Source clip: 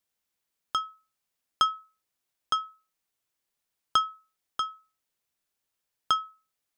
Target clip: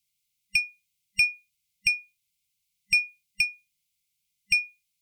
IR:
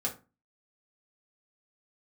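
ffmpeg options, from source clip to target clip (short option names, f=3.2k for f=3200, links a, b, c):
-af "afftfilt=real='real(if(between(b,1,1008),(2*floor((b-1)/48)+1)*48-b,b),0)':imag='imag(if(between(b,1,1008),(2*floor((b-1)/48)+1)*48-b,b),0)*if(between(b,1,1008),-1,1)':win_size=2048:overlap=0.75,afftfilt=real='re*(1-between(b*sr/4096,150,1500))':imag='im*(1-between(b*sr/4096,150,1500))':win_size=4096:overlap=0.75,alimiter=limit=-18dB:level=0:latency=1:release=55,asetrate=59535,aresample=44100,volume=7dB"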